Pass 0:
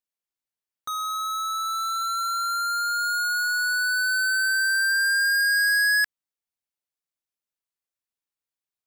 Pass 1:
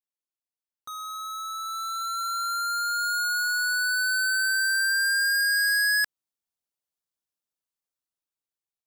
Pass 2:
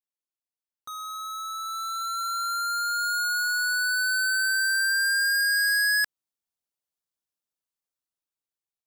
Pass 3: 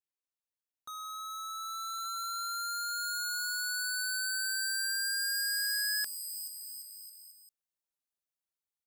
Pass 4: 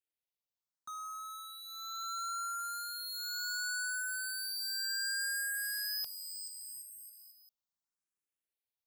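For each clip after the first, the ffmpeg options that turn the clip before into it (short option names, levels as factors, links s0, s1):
-af "equalizer=f=2100:w=1.7:g=-5.5,dynaudnorm=f=800:g=5:m=2.37,volume=0.447"
-af anull
-filter_complex "[0:a]acrossover=split=3700|5500[s0][s1][s2];[s0]asoftclip=type=tanh:threshold=0.0266[s3];[s2]aecho=1:1:430|774|1049|1269|1445:0.631|0.398|0.251|0.158|0.1[s4];[s3][s1][s4]amix=inputs=3:normalize=0,volume=0.562"
-filter_complex "[0:a]asoftclip=type=tanh:threshold=0.0631,asplit=2[s0][s1];[s1]afreqshift=0.71[s2];[s0][s2]amix=inputs=2:normalize=1"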